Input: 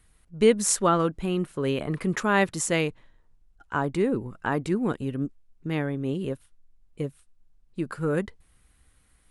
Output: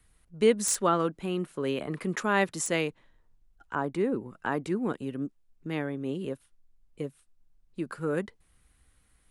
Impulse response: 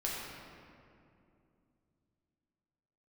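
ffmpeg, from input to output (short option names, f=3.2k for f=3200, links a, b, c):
-filter_complex "[0:a]acrossover=split=150|1300|2200[a][b][c][d];[a]acompressor=threshold=-52dB:ratio=6[e];[d]aeval=exprs='0.15*(abs(mod(val(0)/0.15+3,4)-2)-1)':c=same[f];[e][b][c][f]amix=inputs=4:normalize=0,asettb=1/sr,asplit=3[g][h][i];[g]atrim=end=3.754[j];[h]atrim=start=3.75:end=4.94,asetpts=PTS-STARTPTS,afade=t=in:d=0.004:c=qsin,afade=t=out:st=1.186:d=0.004:c=qsin,adynamicequalizer=threshold=0.00708:dfrequency=2300:dqfactor=0.7:tfrequency=2300:tqfactor=0.7:attack=5:release=100:ratio=0.375:range=2:mode=cutabove:tftype=highshelf[k];[i]atrim=start=4.936[l];[j][k]acrossfade=d=0.004:c1=hsin:c2=qsin[m];[m][l]acrossfade=d=0.004:c1=qsin:c2=hsin,volume=-3dB"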